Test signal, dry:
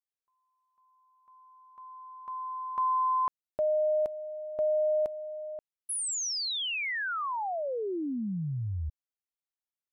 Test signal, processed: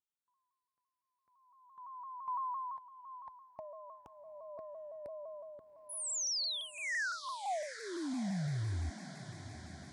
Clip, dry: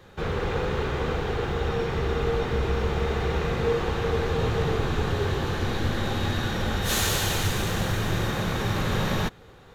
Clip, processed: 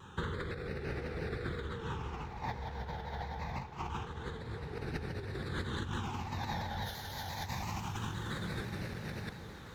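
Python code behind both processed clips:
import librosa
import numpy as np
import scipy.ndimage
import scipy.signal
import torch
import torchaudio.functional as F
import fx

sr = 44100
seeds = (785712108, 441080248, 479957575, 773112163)

p1 = scipy.signal.sosfilt(scipy.signal.butter(2, 55.0, 'highpass', fs=sr, output='sos'), x)
p2 = fx.peak_eq(p1, sr, hz=890.0, db=9.5, octaves=0.33)
p3 = fx.over_compress(p2, sr, threshold_db=-30.0, ratio=-0.5)
p4 = fx.phaser_stages(p3, sr, stages=8, low_hz=350.0, high_hz=1000.0, hz=0.25, feedback_pct=5)
p5 = p4 + fx.echo_diffused(p4, sr, ms=788, feedback_pct=68, wet_db=-13, dry=0)
p6 = fx.vibrato_shape(p5, sr, shape='saw_down', rate_hz=5.9, depth_cents=100.0)
y = p6 * librosa.db_to_amplitude(-5.5)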